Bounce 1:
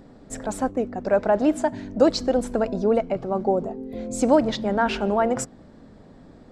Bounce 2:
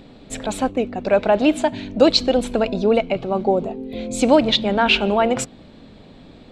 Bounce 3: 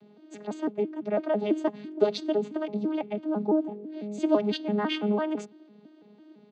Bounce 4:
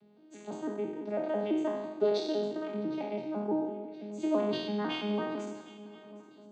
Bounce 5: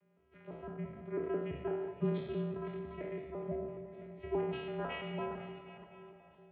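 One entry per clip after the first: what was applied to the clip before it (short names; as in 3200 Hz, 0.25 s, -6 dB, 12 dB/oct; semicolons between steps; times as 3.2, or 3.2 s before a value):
band shelf 3100 Hz +12 dB 1.1 oct; gain +3.5 dB
arpeggiated vocoder bare fifth, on G#3, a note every 0.167 s; comb 2.6 ms, depth 30%; gain -8 dB
spectral trails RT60 1.09 s; swung echo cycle 1.017 s, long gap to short 3:1, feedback 32%, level -19.5 dB; gain -8 dB
regenerating reverse delay 0.254 s, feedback 50%, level -11 dB; Chebyshev high-pass 380 Hz, order 3; mistuned SSB -240 Hz 460–2800 Hz; gain -1.5 dB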